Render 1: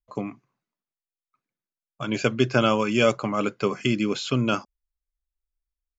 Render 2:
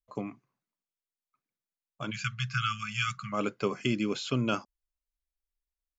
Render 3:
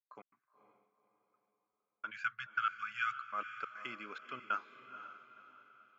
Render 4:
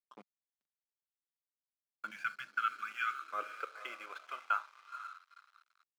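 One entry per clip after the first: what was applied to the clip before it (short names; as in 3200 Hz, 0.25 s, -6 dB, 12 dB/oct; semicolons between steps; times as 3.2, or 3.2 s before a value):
spectral delete 2.11–3.33, 200–1100 Hz; gain -5.5 dB
step gate ".x.xxxx.x.xxxx.x" 140 bpm -60 dB; band-pass 1500 Hz, Q 4; diffused feedback echo 0.498 s, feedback 41%, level -11 dB; gain +2.5 dB
on a send at -10 dB: reverb RT60 0.60 s, pre-delay 6 ms; on the sum: crossover distortion -57 dBFS; high-pass sweep 190 Hz -> 1200 Hz, 2.22–5.09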